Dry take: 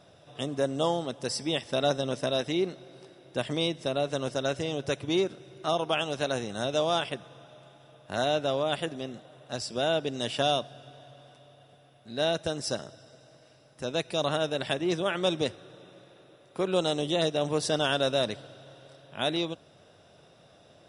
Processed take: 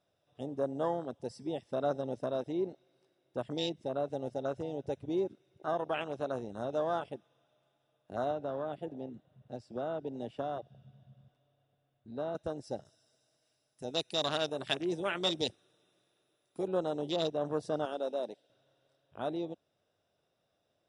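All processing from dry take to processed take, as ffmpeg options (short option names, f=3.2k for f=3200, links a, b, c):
-filter_complex "[0:a]asettb=1/sr,asplit=3[a][b][c];[a]atrim=end=8.314[d];[b]atrim=start=8.31:end=12.35,asetpts=PTS-STARTPTS,afade=t=in:d=0.004:c=qsin,afade=t=out:st=4.036:d=0.004:c=qsin,bass=f=250:g=9,treble=f=4k:g=-7,acrossover=split=240|3000[e][f][g];[e]acompressor=threshold=-45dB:ratio=4[h];[f]acompressor=threshold=-28dB:ratio=4[i];[g]acompressor=threshold=-41dB:ratio=4[j];[h][i][j]amix=inputs=3:normalize=0[k];[c]atrim=start=12.346[l];[d][k]acrossfade=d=0.004:c1=hsin:c2=qsin[m];[m][l]acrossfade=d=0.004:c1=qsin:c2=hsin,asettb=1/sr,asplit=3[n][o][p];[n]atrim=end=12.854[q];[o]atrim=start=12.85:end=16.68,asetpts=PTS-STARTPTS,afade=t=in:d=0.004:c=qsin,afade=t=out:st=3.826:d=0.004:c=qsin,aemphasis=mode=production:type=75kf,bandreject=f=540:w=12[r];[p]atrim=start=16.676[s];[q][r]acrossfade=d=0.004:c1=hsin:c2=qsin[t];[t][s]acrossfade=d=0.004:c1=qsin:c2=hsin,asettb=1/sr,asplit=3[u][v][w];[u]atrim=end=17.854[x];[v]atrim=start=17.85:end=18.5,asetpts=PTS-STARTPTS,afade=t=in:d=0.004:c=qsin,afade=t=out:st=0.646:d=0.004:c=qsin,highpass=320,equalizer=f=1.2k:t=o:w=0.81:g=-12.5[y];[w]atrim=start=18.496[z];[x][y]acrossfade=d=0.004:c1=hsin:c2=qsin[aa];[aa][z]acrossfade=d=0.004:c1=qsin:c2=hsin,afwtdn=0.0282,equalizer=f=150:w=1.9:g=-4,volume=-5dB"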